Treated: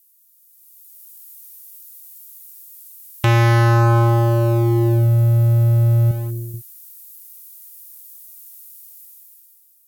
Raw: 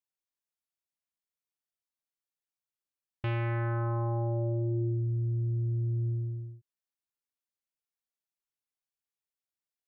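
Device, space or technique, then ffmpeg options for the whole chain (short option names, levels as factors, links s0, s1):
FM broadcast chain: -filter_complex "[0:a]highpass=f=62:p=1,dynaudnorm=f=180:g=9:m=5.62,acrossover=split=440|1900[s0][s1][s2];[s0]acompressor=threshold=0.141:ratio=4[s3];[s1]acompressor=threshold=0.0562:ratio=4[s4];[s2]acompressor=threshold=0.00355:ratio=4[s5];[s3][s4][s5]amix=inputs=3:normalize=0,aemphasis=mode=production:type=75fm,alimiter=limit=0.178:level=0:latency=1,asoftclip=type=hard:threshold=0.126,lowpass=f=15000:w=0.5412,lowpass=f=15000:w=1.3066,aemphasis=mode=production:type=75fm,asettb=1/sr,asplit=3[s6][s7][s8];[s6]atrim=end=6.114[s9];[s7]atrim=start=6.11:end=6.54,asetpts=PTS-STARTPTS,afade=t=in:d=0.004:c=qsin,afade=t=out:st=0.426:d=0.004:c=qsin,lowshelf=f=330:g=-11[s10];[s8]atrim=start=6.536[s11];[s9][s10]acrossfade=d=0.004:c1=hsin:c2=qsin[s12];[s12][s11]acrossfade=d=0.004:c1=qsin:c2=hsin,volume=2.51"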